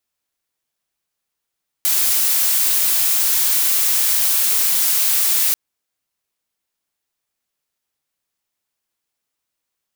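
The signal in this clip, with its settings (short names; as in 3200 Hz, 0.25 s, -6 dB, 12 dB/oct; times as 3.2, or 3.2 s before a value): noise blue, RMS -16.5 dBFS 3.69 s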